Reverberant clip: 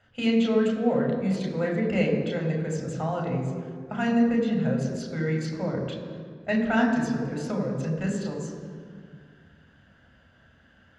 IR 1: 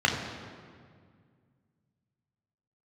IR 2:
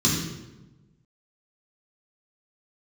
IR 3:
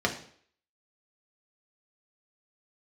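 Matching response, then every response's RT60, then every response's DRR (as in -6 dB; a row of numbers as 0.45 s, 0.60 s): 1; 2.0 s, 1.1 s, 0.55 s; 0.0 dB, -6.0 dB, 0.5 dB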